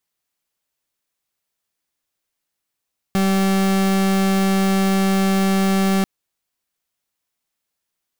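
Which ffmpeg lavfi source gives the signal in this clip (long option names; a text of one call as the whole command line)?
ffmpeg -f lavfi -i "aevalsrc='0.141*(2*lt(mod(193*t,1),0.39)-1)':duration=2.89:sample_rate=44100" out.wav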